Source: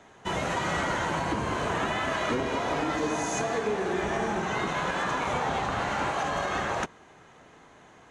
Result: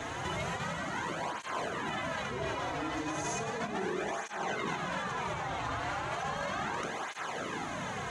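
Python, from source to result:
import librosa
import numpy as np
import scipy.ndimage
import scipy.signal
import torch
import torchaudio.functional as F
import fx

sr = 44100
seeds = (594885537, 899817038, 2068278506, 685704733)

p1 = fx.peak_eq(x, sr, hz=390.0, db=-3.0, octaves=1.4)
p2 = fx.over_compress(p1, sr, threshold_db=-41.0, ratio=-1.0)
p3 = p2 + fx.echo_single(p2, sr, ms=887, db=-11.5, dry=0)
p4 = fx.flanger_cancel(p3, sr, hz=0.35, depth_ms=5.4)
y = p4 * 10.0 ** (8.5 / 20.0)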